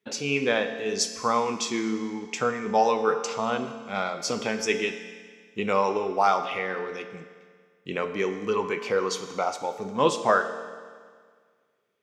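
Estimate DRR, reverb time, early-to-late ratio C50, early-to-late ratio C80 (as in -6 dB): 8.0 dB, 1.8 s, 10.0 dB, 11.0 dB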